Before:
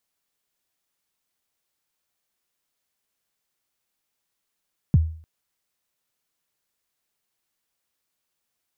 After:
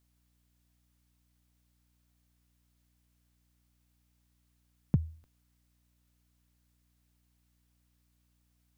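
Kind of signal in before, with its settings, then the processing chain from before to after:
kick drum length 0.30 s, from 190 Hz, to 80 Hz, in 29 ms, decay 0.47 s, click off, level -9.5 dB
peaking EQ 66 Hz -14 dB 2.2 oct; hum 60 Hz, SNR 27 dB

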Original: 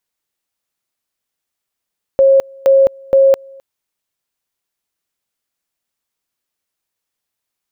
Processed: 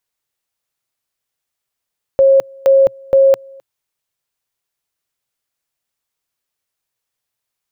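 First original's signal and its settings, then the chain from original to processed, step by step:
two-level tone 542 Hz -5.5 dBFS, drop 28.5 dB, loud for 0.21 s, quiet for 0.26 s, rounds 3
graphic EQ with 31 bands 125 Hz +5 dB, 200 Hz -6 dB, 315 Hz -4 dB

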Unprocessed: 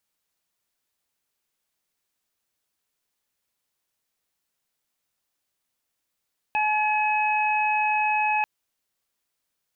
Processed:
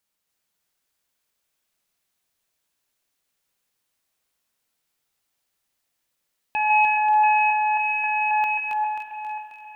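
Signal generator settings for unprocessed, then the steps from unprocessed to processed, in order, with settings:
steady additive tone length 1.89 s, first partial 851 Hz, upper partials -12/-2.5 dB, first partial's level -22 dB
backward echo that repeats 268 ms, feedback 56%, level -4 dB; on a send: feedback echo behind a high-pass 291 ms, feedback 47%, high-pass 1.7 kHz, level -6 dB; on the sum: spring tank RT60 3.5 s, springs 49 ms, chirp 55 ms, DRR 6.5 dB

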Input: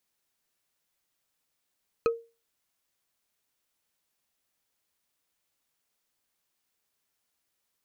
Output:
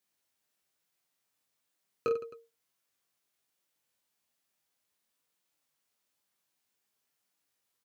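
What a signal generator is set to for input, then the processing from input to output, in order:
wood hit bar, lowest mode 462 Hz, decay 0.30 s, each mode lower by 6 dB, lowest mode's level -18 dB
high-pass 87 Hz; flange 1.1 Hz, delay 5 ms, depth 5.1 ms, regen -34%; on a send: reverse bouncing-ball echo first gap 20 ms, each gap 1.5×, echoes 5

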